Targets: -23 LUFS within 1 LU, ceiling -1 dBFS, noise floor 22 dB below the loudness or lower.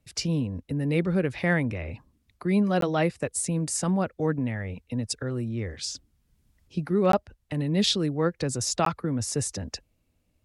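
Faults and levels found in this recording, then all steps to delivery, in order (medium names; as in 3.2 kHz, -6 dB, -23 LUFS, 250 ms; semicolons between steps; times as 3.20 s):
dropouts 3; longest dropout 13 ms; loudness -27.5 LUFS; peak level -11.0 dBFS; loudness target -23.0 LUFS
-> interpolate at 2.81/7.12/8.85 s, 13 ms; trim +4.5 dB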